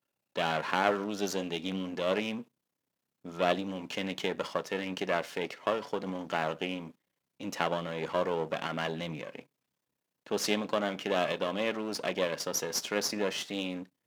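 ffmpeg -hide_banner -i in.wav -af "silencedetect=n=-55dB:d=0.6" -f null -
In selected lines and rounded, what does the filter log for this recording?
silence_start: 2.44
silence_end: 3.25 | silence_duration: 0.81
silence_start: 9.45
silence_end: 10.26 | silence_duration: 0.81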